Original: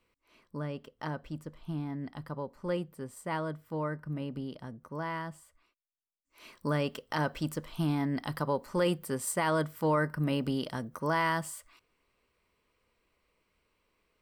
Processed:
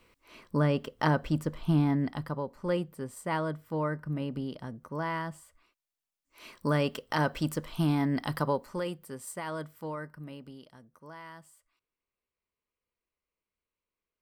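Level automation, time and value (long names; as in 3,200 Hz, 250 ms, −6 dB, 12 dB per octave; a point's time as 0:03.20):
0:01.90 +11 dB
0:02.42 +3 dB
0:08.47 +3 dB
0:08.92 −8 dB
0:09.71 −8 dB
0:10.70 −18 dB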